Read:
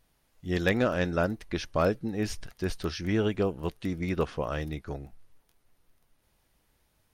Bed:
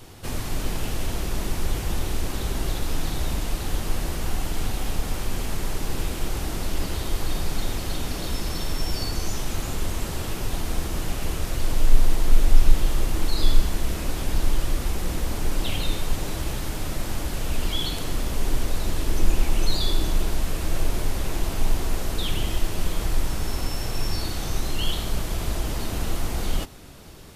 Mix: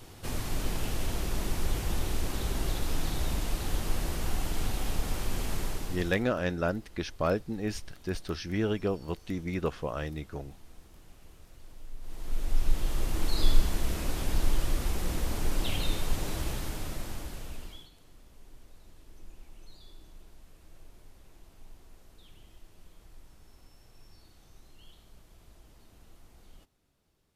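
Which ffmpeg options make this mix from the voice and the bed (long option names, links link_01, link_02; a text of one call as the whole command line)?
ffmpeg -i stem1.wav -i stem2.wav -filter_complex "[0:a]adelay=5450,volume=-2.5dB[link_01];[1:a]volume=18dB,afade=type=out:start_time=5.58:duration=0.69:silence=0.0749894,afade=type=in:start_time=12:duration=1.38:silence=0.0749894,afade=type=out:start_time=16.41:duration=1.48:silence=0.0562341[link_02];[link_01][link_02]amix=inputs=2:normalize=0" out.wav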